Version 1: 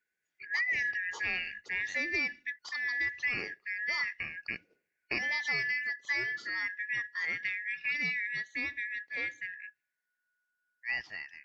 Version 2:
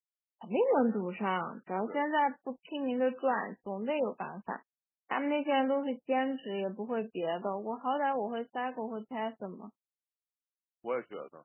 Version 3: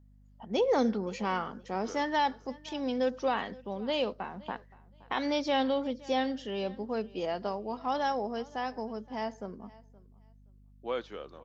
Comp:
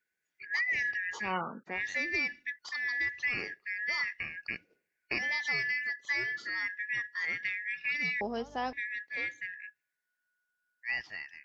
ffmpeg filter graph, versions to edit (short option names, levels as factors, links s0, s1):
-filter_complex "[0:a]asplit=3[s0][s1][s2];[s0]atrim=end=1.35[s3];[1:a]atrim=start=1.19:end=1.81[s4];[s1]atrim=start=1.65:end=8.212[s5];[2:a]atrim=start=8.208:end=8.732[s6];[s2]atrim=start=8.728[s7];[s3][s4]acrossfade=d=0.16:c1=tri:c2=tri[s8];[s8][s5]acrossfade=d=0.16:c1=tri:c2=tri[s9];[s9][s6]acrossfade=d=0.004:c1=hsin:c2=hsin[s10];[s10][s7]acrossfade=d=0.004:c1=hsin:c2=hsin"